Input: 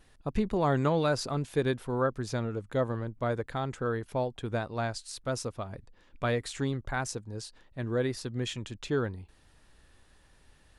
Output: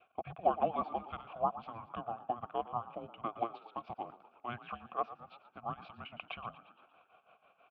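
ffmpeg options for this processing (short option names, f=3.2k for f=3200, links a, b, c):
-filter_complex "[0:a]highpass=f=160:t=q:w=0.5412,highpass=f=160:t=q:w=1.307,lowpass=f=3.5k:t=q:w=0.5176,lowpass=f=3.5k:t=q:w=0.7071,lowpass=f=3.5k:t=q:w=1.932,afreqshift=-350,tremolo=f=4.4:d=0.86,asplit=2[a][b];[b]acompressor=threshold=-39dB:ratio=8,volume=1.5dB[c];[a][c]amix=inputs=2:normalize=0,adynamicequalizer=threshold=0.00316:dfrequency=1000:dqfactor=2.8:tfrequency=1000:tqfactor=2.8:attack=5:release=100:ratio=0.375:range=2:mode=cutabove:tftype=bell,asplit=3[d][e][f];[d]bandpass=f=730:t=q:w=8,volume=0dB[g];[e]bandpass=f=1.09k:t=q:w=8,volume=-6dB[h];[f]bandpass=f=2.44k:t=q:w=8,volume=-9dB[i];[g][h][i]amix=inputs=3:normalize=0,asplit=2[j][k];[k]asplit=6[l][m][n][o][p][q];[l]adelay=162,afreqshift=40,volume=-15dB[r];[m]adelay=324,afreqshift=80,volume=-19.7dB[s];[n]adelay=486,afreqshift=120,volume=-24.5dB[t];[o]adelay=648,afreqshift=160,volume=-29.2dB[u];[p]adelay=810,afreqshift=200,volume=-33.9dB[v];[q]adelay=972,afreqshift=240,volume=-38.7dB[w];[r][s][t][u][v][w]amix=inputs=6:normalize=0[x];[j][x]amix=inputs=2:normalize=0,atempo=1.4,volume=10.5dB"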